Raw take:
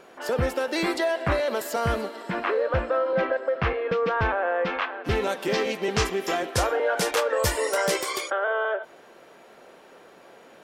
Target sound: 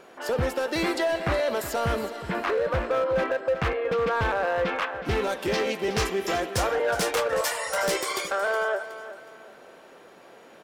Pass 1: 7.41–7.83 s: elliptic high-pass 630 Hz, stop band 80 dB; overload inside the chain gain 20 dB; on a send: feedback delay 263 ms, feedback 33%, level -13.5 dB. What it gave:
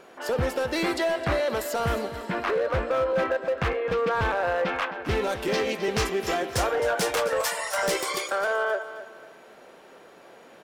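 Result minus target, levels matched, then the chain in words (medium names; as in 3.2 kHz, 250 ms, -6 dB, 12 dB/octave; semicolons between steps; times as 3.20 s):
echo 105 ms early
7.41–7.83 s: elliptic high-pass 630 Hz, stop band 80 dB; overload inside the chain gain 20 dB; on a send: feedback delay 368 ms, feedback 33%, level -13.5 dB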